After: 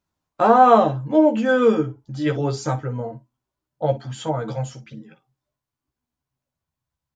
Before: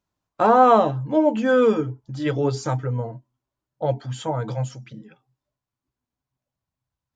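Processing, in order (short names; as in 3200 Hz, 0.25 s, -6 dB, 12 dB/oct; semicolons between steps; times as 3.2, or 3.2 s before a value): early reflections 13 ms -5.5 dB, 58 ms -15.5 dB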